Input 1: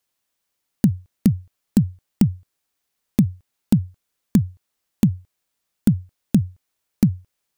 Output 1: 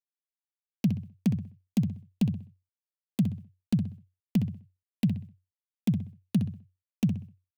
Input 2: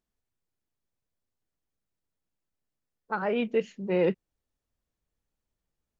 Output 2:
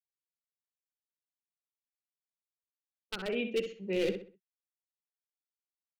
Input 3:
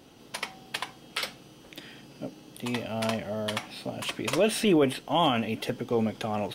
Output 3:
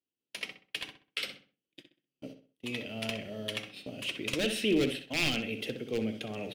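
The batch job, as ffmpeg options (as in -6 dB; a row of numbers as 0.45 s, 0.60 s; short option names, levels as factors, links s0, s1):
-filter_complex "[0:a]highpass=f=62:p=1,acrossover=split=350 2100:gain=0.141 1 0.141[s0][s1][s2];[s0][s1][s2]amix=inputs=3:normalize=0,aeval=exprs='0.0841*(abs(mod(val(0)/0.0841+3,4)-2)-1)':c=same,firequalizer=gain_entry='entry(110,0);entry(870,-28);entry(2700,0)':delay=0.05:min_phase=1,acontrast=64,agate=range=0.0126:threshold=0.00398:ratio=16:detection=peak,asplit=2[s3][s4];[s4]adelay=64,lowpass=f=3400:p=1,volume=0.422,asplit=2[s5][s6];[s6]adelay=64,lowpass=f=3400:p=1,volume=0.34,asplit=2[s7][s8];[s8]adelay=64,lowpass=f=3400:p=1,volume=0.34,asplit=2[s9][s10];[s10]adelay=64,lowpass=f=3400:p=1,volume=0.34[s11];[s3][s5][s7][s9][s11]amix=inputs=5:normalize=0,volume=1.41"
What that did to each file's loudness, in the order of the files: -8.5 LU, -6.0 LU, -5.0 LU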